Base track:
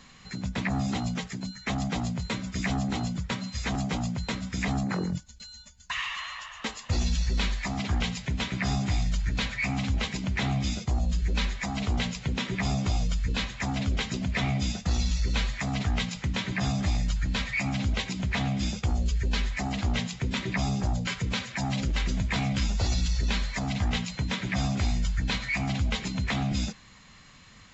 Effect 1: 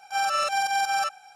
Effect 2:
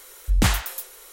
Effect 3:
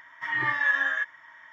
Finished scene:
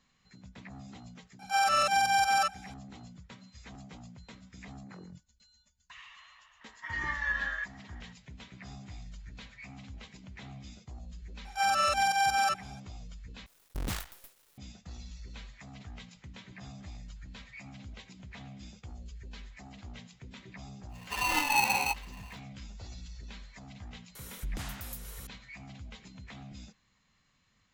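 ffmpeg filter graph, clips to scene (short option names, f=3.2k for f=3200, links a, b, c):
-filter_complex "[1:a]asplit=2[a][b];[3:a]asplit=2[c][d];[2:a]asplit=2[e][f];[0:a]volume=-19dB[g];[a]acontrast=88[h];[e]acrusher=bits=4:dc=4:mix=0:aa=0.000001[i];[d]aeval=exprs='val(0)*sgn(sin(2*PI*870*n/s))':c=same[j];[f]acompressor=threshold=-29dB:ratio=10:attack=0.21:release=225:knee=1:detection=rms[k];[g]asplit=2[l][m];[l]atrim=end=13.464[n];[i]atrim=end=1.12,asetpts=PTS-STARTPTS,volume=-17dB[o];[m]atrim=start=14.576[p];[h]atrim=end=1.35,asetpts=PTS-STARTPTS,volume=-8dB,afade=t=in:d=0.004:c=hsin,afade=t=out:st=1.346:d=0.004:c=hsin,adelay=1390[q];[c]atrim=end=1.52,asetpts=PTS-STARTPTS,volume=-8dB,afade=t=in:d=0.004:c=hsin,afade=t=out:st=1.516:d=0.004:c=hsin,adelay=6610[r];[b]atrim=end=1.35,asetpts=PTS-STARTPTS,volume=-2dB,afade=t=in:d=0.004:c=hsin,afade=t=out:st=1.346:d=0.004:c=hsin,adelay=11450[s];[j]atrim=end=1.52,asetpts=PTS-STARTPTS,volume=-2.5dB,afade=t=in:d=0.1,afade=t=out:st=1.42:d=0.1,adelay=20890[t];[k]atrim=end=1.12,asetpts=PTS-STARTPTS,volume=-2.5dB,afade=t=in:d=0.004:c=hsin,afade=t=out:st=1.116:d=0.004:c=hsin,adelay=24150[u];[n][o]acrossfade=d=0.004:c1=hsin:c2=hsin[v];[v][p]acrossfade=d=0.004:c1=hsin:c2=hsin[w];[w][q][r][s][t][u]amix=inputs=6:normalize=0"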